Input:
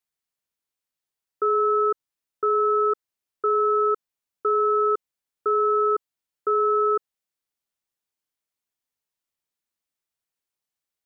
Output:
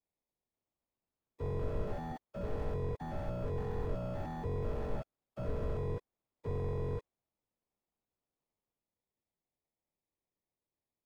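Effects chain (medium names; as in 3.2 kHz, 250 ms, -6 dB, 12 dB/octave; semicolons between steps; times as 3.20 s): frequency axis rescaled in octaves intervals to 123%; 1.84–2.52 s: bass shelf 420 Hz -11.5 dB; sample-and-hold 30×; ever faster or slower copies 541 ms, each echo +5 st, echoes 2; slew-rate limiter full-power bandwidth 5.5 Hz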